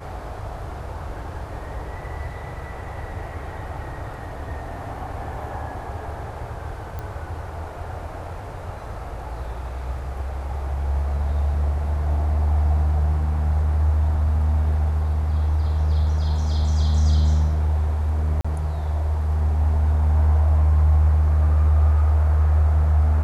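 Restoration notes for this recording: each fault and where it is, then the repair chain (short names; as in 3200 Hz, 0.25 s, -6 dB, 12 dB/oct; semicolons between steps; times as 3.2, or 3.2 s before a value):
6.99 pop -19 dBFS
18.41–18.45 gap 35 ms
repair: de-click; interpolate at 18.41, 35 ms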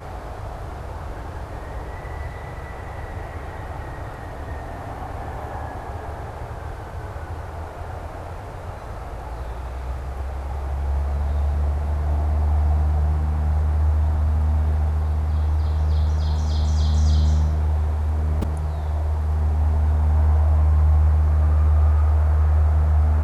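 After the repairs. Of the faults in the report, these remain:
none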